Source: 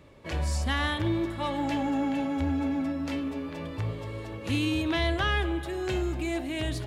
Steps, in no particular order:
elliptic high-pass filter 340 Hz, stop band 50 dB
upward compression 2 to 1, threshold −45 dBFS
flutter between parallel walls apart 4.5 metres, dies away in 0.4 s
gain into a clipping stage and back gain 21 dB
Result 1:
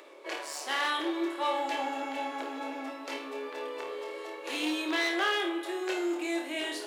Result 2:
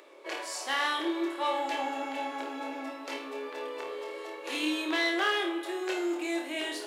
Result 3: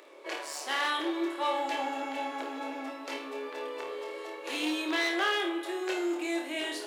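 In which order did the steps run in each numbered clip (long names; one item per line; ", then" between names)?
flutter between parallel walls, then gain into a clipping stage and back, then elliptic high-pass filter, then upward compression
gain into a clipping stage and back, then flutter between parallel walls, then upward compression, then elliptic high-pass filter
upward compression, then flutter between parallel walls, then gain into a clipping stage and back, then elliptic high-pass filter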